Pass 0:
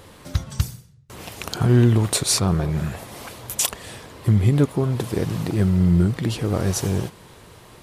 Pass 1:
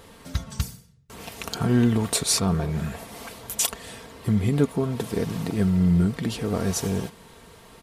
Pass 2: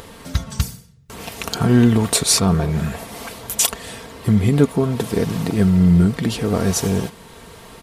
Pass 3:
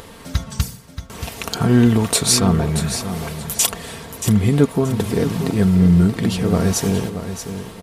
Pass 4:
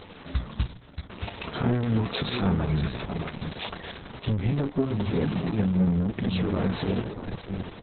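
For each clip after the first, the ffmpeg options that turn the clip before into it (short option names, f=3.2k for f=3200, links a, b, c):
-af "aecho=1:1:4.4:0.47,volume=-3dB"
-af "acompressor=mode=upward:threshold=-42dB:ratio=2.5,volume=6.5dB"
-af "aecho=1:1:629|1258|1887:0.316|0.0791|0.0198"
-af "flanger=delay=9.9:depth=8.1:regen=51:speed=0.8:shape=sinusoidal,asoftclip=type=tanh:threshold=-17dB" -ar 48000 -c:a libopus -b:a 6k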